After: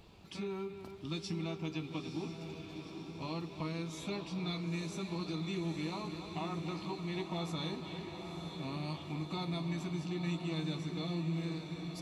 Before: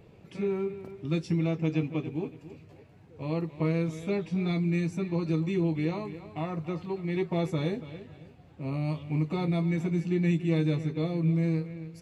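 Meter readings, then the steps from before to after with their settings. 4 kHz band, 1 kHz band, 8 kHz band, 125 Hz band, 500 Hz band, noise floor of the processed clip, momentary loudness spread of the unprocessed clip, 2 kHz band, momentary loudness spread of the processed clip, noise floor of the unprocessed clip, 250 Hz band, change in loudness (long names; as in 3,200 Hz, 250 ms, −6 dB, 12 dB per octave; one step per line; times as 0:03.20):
+3.5 dB, −3.0 dB, can't be measured, −10.0 dB, −10.0 dB, −48 dBFS, 12 LU, −5.5 dB, 7 LU, −54 dBFS, −9.5 dB, −9.5 dB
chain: octave-band graphic EQ 125/250/500/1,000/2,000/4,000 Hz −12/−3/−12/+3/−8/+7 dB
downward compressor 2 to 1, threshold −43 dBFS, peak gain reduction 7.5 dB
on a send: feedback delay with all-pass diffusion 934 ms, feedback 65%, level −7 dB
on the sum: level +3.5 dB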